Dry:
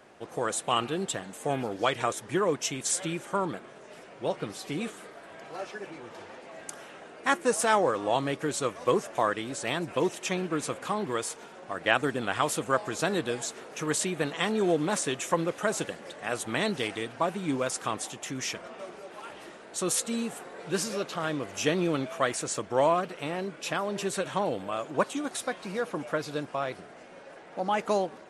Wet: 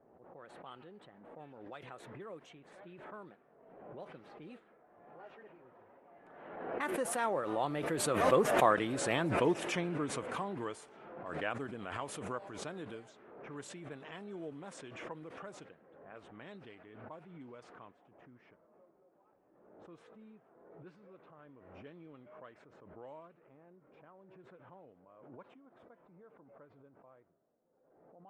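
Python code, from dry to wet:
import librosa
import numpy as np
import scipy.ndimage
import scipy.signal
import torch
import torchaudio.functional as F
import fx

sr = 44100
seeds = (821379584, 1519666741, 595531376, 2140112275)

y = fx.doppler_pass(x, sr, speed_mps=22, closest_m=13.0, pass_at_s=8.86)
y = fx.peak_eq(y, sr, hz=6400.0, db=-12.5, octaves=1.6)
y = fx.env_lowpass(y, sr, base_hz=680.0, full_db=-44.0)
y = fx.pre_swell(y, sr, db_per_s=43.0)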